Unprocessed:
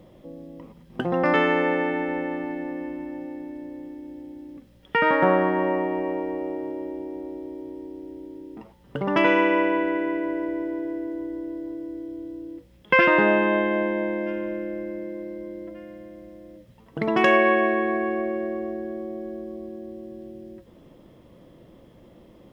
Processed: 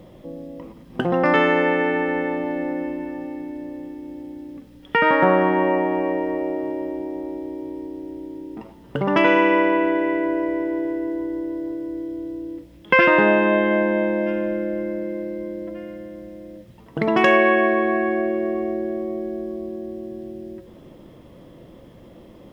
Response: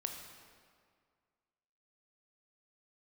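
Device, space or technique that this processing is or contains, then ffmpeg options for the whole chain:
ducked reverb: -filter_complex "[0:a]asplit=3[link_01][link_02][link_03];[1:a]atrim=start_sample=2205[link_04];[link_02][link_04]afir=irnorm=-1:irlink=0[link_05];[link_03]apad=whole_len=993421[link_06];[link_05][link_06]sidechaincompress=threshold=-25dB:ratio=8:attack=16:release=108,volume=-2dB[link_07];[link_01][link_07]amix=inputs=2:normalize=0,volume=1dB"

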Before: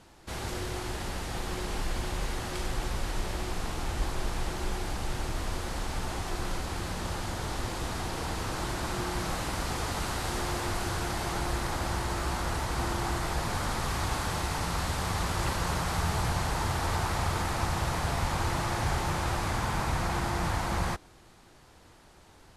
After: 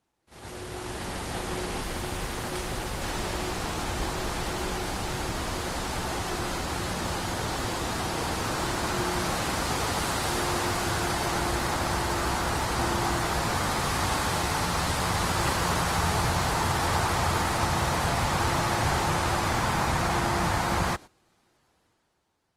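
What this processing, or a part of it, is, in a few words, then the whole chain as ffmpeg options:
video call: -af "highpass=frequency=110:poles=1,dynaudnorm=framelen=130:gausssize=13:maxgain=9.5dB,agate=range=-15dB:threshold=-36dB:ratio=16:detection=peak,volume=-4dB" -ar 48000 -c:a libopus -b:a 24k

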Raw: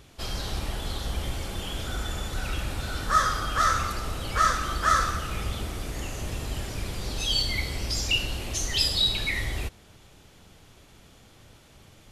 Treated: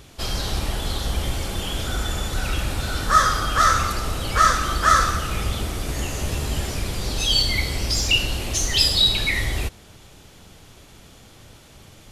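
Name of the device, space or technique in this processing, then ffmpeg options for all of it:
exciter from parts: -filter_complex "[0:a]asettb=1/sr,asplit=3[link_01][link_02][link_03];[link_01]atrim=end=5.874[link_04];[link_02]atrim=start=5.87:end=6.79,asetpts=PTS-STARTPTS,afade=type=in:duration=0.004:curve=qsin,afade=type=out:start_time=0.916:duration=0.004:curve=qsin,asplit=2[link_05][link_06];[link_06]adelay=14,volume=-6dB[link_07];[link_05][link_07]amix=inputs=2:normalize=0,atrim=end_sample=40572[link_08];[link_03]atrim=start=6.786[link_09];[link_04][link_08]acrossfade=duration=0.004:curve1=hsin:curve2=qsin[link_10];[link_10][link_09]acrossfade=duration=0.004:curve1=qsin:curve2=hsin,asplit=2[link_11][link_12];[link_12]highpass=2900,asoftclip=type=tanh:threshold=-34.5dB,volume=-12dB[link_13];[link_11][link_13]amix=inputs=2:normalize=0,volume=6dB"

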